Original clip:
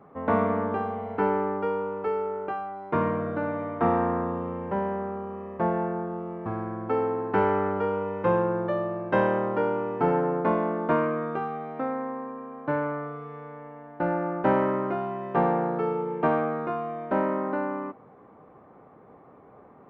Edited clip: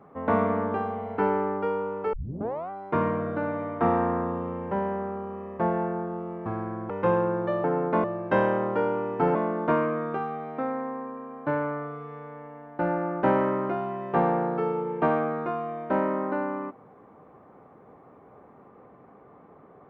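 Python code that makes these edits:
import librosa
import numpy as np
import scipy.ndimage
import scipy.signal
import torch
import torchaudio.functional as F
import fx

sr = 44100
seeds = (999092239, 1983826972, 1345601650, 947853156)

y = fx.edit(x, sr, fx.tape_start(start_s=2.13, length_s=0.57),
    fx.cut(start_s=6.9, length_s=1.21),
    fx.move(start_s=10.16, length_s=0.4, to_s=8.85), tone=tone)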